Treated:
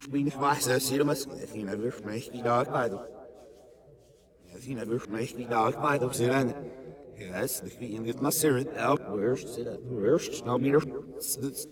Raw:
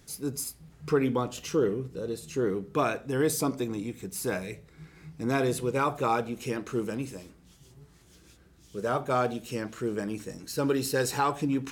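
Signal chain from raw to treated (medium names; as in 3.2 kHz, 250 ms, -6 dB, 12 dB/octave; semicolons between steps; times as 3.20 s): reverse the whole clip; band-passed feedback delay 211 ms, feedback 82%, band-pass 440 Hz, level -13 dB; wow and flutter 75 cents; three bands expanded up and down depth 40%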